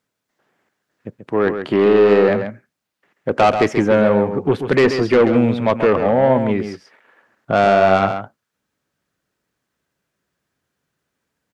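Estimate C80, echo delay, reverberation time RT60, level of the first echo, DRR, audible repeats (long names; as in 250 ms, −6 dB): no reverb audible, 135 ms, no reverb audible, −8.5 dB, no reverb audible, 1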